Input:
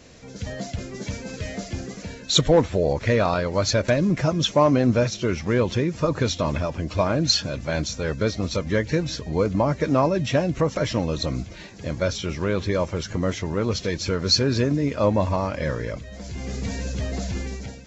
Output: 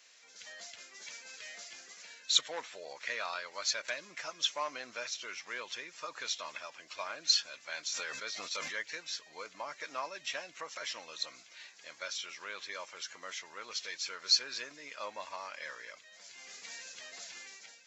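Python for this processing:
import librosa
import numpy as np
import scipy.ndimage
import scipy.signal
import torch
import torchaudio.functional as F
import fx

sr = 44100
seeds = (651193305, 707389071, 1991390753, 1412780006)

y = scipy.signal.sosfilt(scipy.signal.butter(2, 1500.0, 'highpass', fs=sr, output='sos'), x)
y = fx.sustainer(y, sr, db_per_s=26.0, at=(7.91, 8.81), fade=0.02)
y = y * 10.0 ** (-6.5 / 20.0)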